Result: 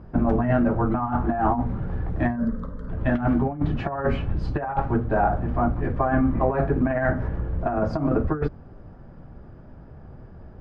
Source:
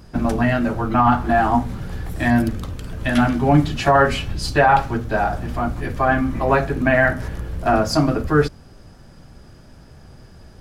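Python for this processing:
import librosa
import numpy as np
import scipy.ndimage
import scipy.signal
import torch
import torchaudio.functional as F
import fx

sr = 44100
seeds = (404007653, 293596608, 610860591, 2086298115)

y = scipy.signal.sosfilt(scipy.signal.butter(2, 1200.0, 'lowpass', fs=sr, output='sos'), x)
y = fx.over_compress(y, sr, threshold_db=-19.0, ratio=-0.5)
y = fx.fixed_phaser(y, sr, hz=510.0, stages=8, at=(2.35, 2.88), fade=0.02)
y = y * 10.0 ** (-1.5 / 20.0)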